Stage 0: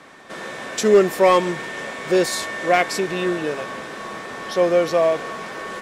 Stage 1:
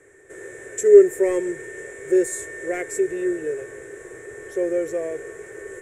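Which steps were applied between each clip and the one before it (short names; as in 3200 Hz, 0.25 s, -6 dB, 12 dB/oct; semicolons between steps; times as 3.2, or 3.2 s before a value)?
EQ curve 110 Hz 0 dB, 220 Hz -25 dB, 400 Hz +5 dB, 650 Hz -16 dB, 1100 Hz -24 dB, 1800 Hz -6 dB, 2900 Hz -22 dB, 4800 Hz -29 dB, 7400 Hz +3 dB, 14000 Hz -10 dB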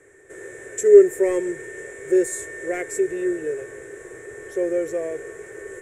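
nothing audible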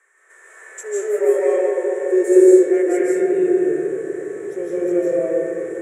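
high-pass sweep 1100 Hz -> 180 Hz, 0.34–3.39; reverb RT60 3.3 s, pre-delay 0.12 s, DRR -8.5 dB; gain -6.5 dB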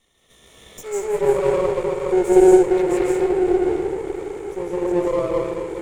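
minimum comb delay 0.32 ms; gain -1 dB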